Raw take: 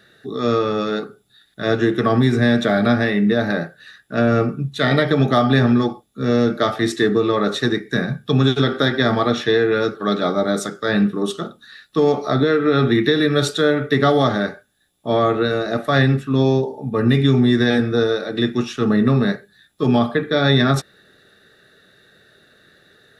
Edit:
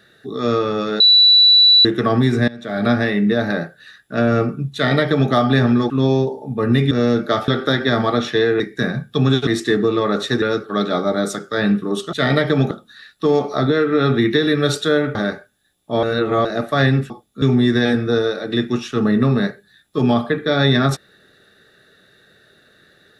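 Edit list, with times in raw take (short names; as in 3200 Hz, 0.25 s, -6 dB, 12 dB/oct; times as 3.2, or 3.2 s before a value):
1–1.85 bleep 3950 Hz -7 dBFS
2.48–2.87 fade in quadratic, from -21 dB
4.74–5.32 copy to 11.44
5.9–6.22 swap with 16.26–17.27
6.79–7.74 swap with 8.61–9.73
13.88–14.31 cut
15.19–15.61 reverse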